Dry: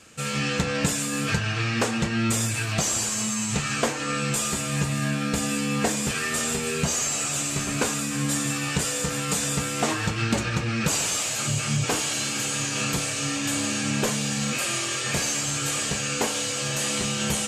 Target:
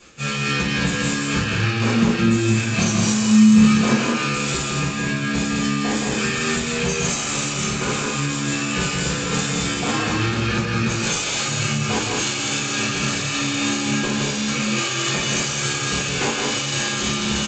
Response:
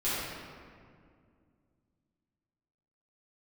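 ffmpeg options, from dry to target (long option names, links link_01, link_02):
-filter_complex "[1:a]atrim=start_sample=2205,atrim=end_sample=3969[link_01];[0:a][link_01]afir=irnorm=-1:irlink=0,tremolo=f=3.5:d=0.57,acompressor=threshold=-23dB:ratio=3,asettb=1/sr,asplit=3[link_02][link_03][link_04];[link_02]atrim=end=1.844[link_05];[link_03]atrim=start=1.84:end=4.08,asetpts=PTS-STARTPTS,afade=type=in:duration=0.004:curve=qsin,afade=type=out:start_time=2.236:duration=0.004:curve=qsin,equalizer=frequency=210:width_type=o:width=0.94:gain=9[link_06];[link_04]atrim=start=4.076[link_07];[link_05][link_06]acrossfade=duration=0.004:curve1=hsin:curve2=qsin[link_08];[link_08][link_07]acrossfade=duration=0.004:curve1=qsin:curve2=hsin,aecho=1:1:166.2|204.1:0.631|0.562,volume=2.5dB" -ar 16000 -c:a g722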